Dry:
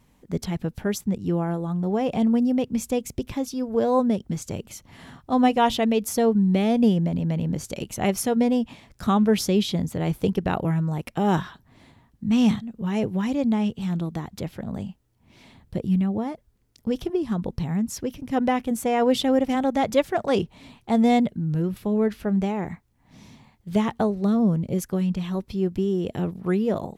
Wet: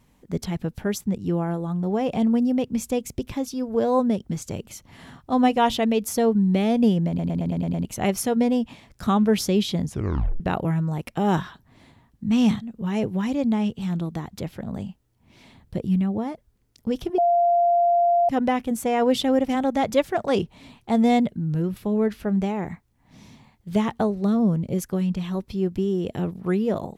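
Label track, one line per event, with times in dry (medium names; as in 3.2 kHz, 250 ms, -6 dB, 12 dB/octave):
7.080000	7.080000	stutter in place 0.11 s, 7 plays
9.840000	9.840000	tape stop 0.56 s
17.180000	18.290000	bleep 693 Hz -15.5 dBFS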